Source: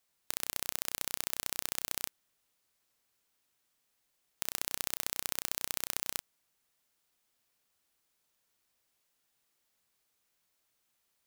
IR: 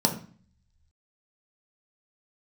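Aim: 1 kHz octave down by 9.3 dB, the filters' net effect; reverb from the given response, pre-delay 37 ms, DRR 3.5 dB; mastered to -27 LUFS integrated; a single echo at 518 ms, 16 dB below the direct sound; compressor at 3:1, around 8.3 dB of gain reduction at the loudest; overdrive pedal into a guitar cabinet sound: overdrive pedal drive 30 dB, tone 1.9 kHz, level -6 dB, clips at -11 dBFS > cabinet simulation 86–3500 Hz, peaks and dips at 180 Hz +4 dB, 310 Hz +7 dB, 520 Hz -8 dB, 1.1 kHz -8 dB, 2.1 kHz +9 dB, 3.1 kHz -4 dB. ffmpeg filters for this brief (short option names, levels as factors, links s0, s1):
-filter_complex "[0:a]equalizer=f=1000:t=o:g=-9,acompressor=threshold=0.0126:ratio=3,aecho=1:1:518:0.158,asplit=2[s0][s1];[1:a]atrim=start_sample=2205,adelay=37[s2];[s1][s2]afir=irnorm=-1:irlink=0,volume=0.168[s3];[s0][s3]amix=inputs=2:normalize=0,asplit=2[s4][s5];[s5]highpass=f=720:p=1,volume=31.6,asoftclip=type=tanh:threshold=0.282[s6];[s4][s6]amix=inputs=2:normalize=0,lowpass=f=1900:p=1,volume=0.501,highpass=86,equalizer=f=180:t=q:w=4:g=4,equalizer=f=310:t=q:w=4:g=7,equalizer=f=520:t=q:w=4:g=-8,equalizer=f=1100:t=q:w=4:g=-8,equalizer=f=2100:t=q:w=4:g=9,equalizer=f=3100:t=q:w=4:g=-4,lowpass=f=3500:w=0.5412,lowpass=f=3500:w=1.3066,volume=3.76"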